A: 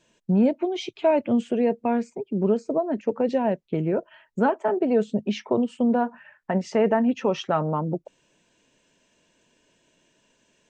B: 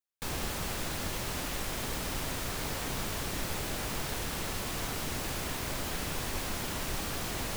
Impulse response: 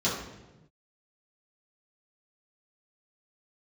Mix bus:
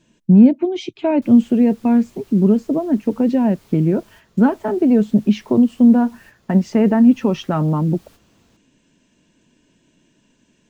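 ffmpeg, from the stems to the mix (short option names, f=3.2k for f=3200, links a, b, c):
-filter_complex "[0:a]lowshelf=f=370:t=q:w=1.5:g=8,volume=1.5dB,asplit=2[a][b];[1:a]acrusher=bits=6:mix=0:aa=0.000001,adelay=1000,volume=-19dB,asplit=2[c][d];[d]volume=-17.5dB[e];[b]apad=whole_len=377714[f];[c][f]sidechaingate=range=-33dB:threshold=-42dB:ratio=16:detection=peak[g];[2:a]atrim=start_sample=2205[h];[e][h]afir=irnorm=-1:irlink=0[i];[a][g][i]amix=inputs=3:normalize=0"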